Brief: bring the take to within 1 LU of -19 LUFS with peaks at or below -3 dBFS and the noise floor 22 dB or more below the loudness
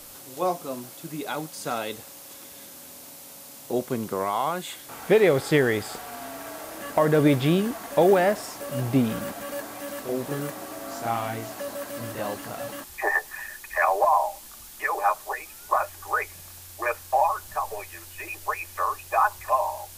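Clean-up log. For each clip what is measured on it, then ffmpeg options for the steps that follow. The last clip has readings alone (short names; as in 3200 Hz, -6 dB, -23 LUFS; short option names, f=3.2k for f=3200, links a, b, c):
noise floor -45 dBFS; noise floor target -48 dBFS; loudness -26.0 LUFS; peak -9.0 dBFS; loudness target -19.0 LUFS
-> -af "afftdn=nr=6:nf=-45"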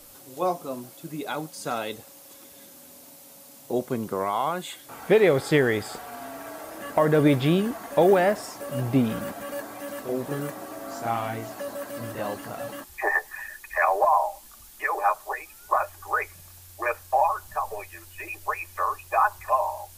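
noise floor -49 dBFS; loudness -26.0 LUFS; peak -9.0 dBFS; loudness target -19.0 LUFS
-> -af "volume=7dB,alimiter=limit=-3dB:level=0:latency=1"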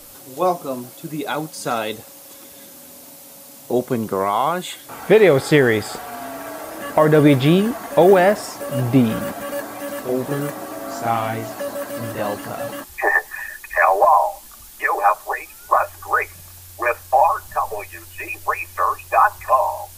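loudness -19.5 LUFS; peak -3.0 dBFS; noise floor -42 dBFS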